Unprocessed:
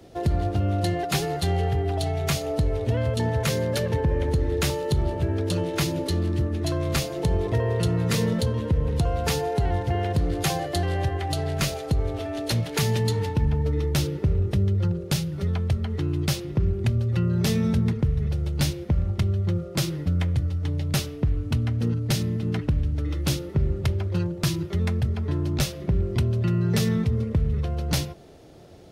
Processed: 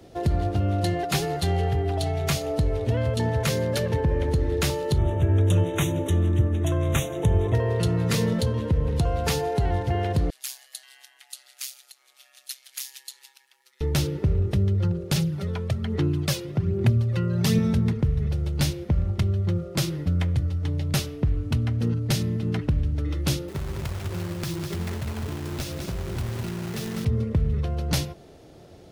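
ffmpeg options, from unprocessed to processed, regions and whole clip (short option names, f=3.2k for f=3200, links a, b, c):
-filter_complex "[0:a]asettb=1/sr,asplit=3[a][b][c];[a]atrim=end=4.984[d];[b]atrim=start=4.98:end=7.55,asetpts=PTS-STARTPTS,afade=t=in:d=0.004:c=qsin,afade=t=out:st=2.566:d=0.004:c=qsin,asuperstop=centerf=4700:order=20:qfactor=2.5,equalizer=f=100:w=4.3:g=9.5[e];[c]atrim=start=7.546[f];[d][e]acrossfade=d=0.004:c1=hsin:c2=qsin[g];[g][f]acrossfade=d=0.004:c1=qsin:c2=hsin,asettb=1/sr,asplit=3[h][i][j];[h]atrim=end=10.304[k];[i]atrim=start=10.3:end=13.81,asetpts=PTS-STARTPTS,afade=t=in:d=0.004:c=qsin,afade=t=out:st=3.506:d=0.004:c=qsin,highpass=1.4k,aderivative,aeval=exprs='val(0)*sin(2*PI*66*n/s)':c=same[l];[j]atrim=start=13.806[m];[k][l]acrossfade=d=0.004:c1=hsin:c2=qsin[n];[n][m]acrossfade=d=0.004:c1=qsin:c2=hsin,asettb=1/sr,asplit=3[o][p][q];[o]atrim=end=15.164[r];[p]atrim=start=15.16:end=17.59,asetpts=PTS-STARTPTS,afade=t=in:d=0.004:c=qsin,afade=t=out:st=2.426:d=0.004:c=qsin,highpass=f=100:w=0.5412,highpass=f=100:w=1.3066,aphaser=in_gain=1:out_gain=1:delay=2.1:decay=0.44:speed=1.2:type=sinusoidal[s];[q]atrim=start=17.586[t];[r][s]acrossfade=d=0.004:c1=hsin:c2=qsin[u];[u][t]acrossfade=d=0.004:c1=qsin:c2=hsin,asettb=1/sr,asplit=3[v][w][x];[v]atrim=end=23.484[y];[w]atrim=start=23.48:end=27.05,asetpts=PTS-STARTPTS,afade=t=in:d=0.004:c=qsin,afade=t=out:st=3.566:d=0.004:c=qsin,acompressor=threshold=-29dB:ratio=4:attack=3.2:release=140:knee=1:detection=peak,acrusher=bits=2:mode=log:mix=0:aa=0.000001,aecho=1:1:203:0.531,atrim=end_sample=157437[z];[x]atrim=start=27.046[aa];[y][z]acrossfade=d=0.004:c1=hsin:c2=qsin[ab];[ab][aa]acrossfade=d=0.004:c1=qsin:c2=hsin"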